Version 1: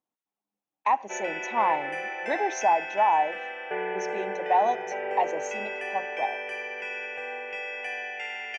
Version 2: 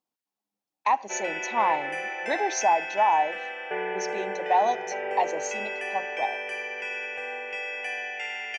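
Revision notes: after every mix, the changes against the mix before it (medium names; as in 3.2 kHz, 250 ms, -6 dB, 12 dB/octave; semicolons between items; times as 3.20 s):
speech: add peaking EQ 4.5 kHz +11.5 dB 0.31 oct; master: add treble shelf 4.1 kHz +7.5 dB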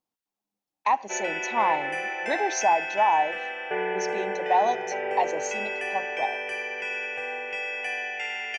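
background: send +8.0 dB; master: add bass shelf 98 Hz +10.5 dB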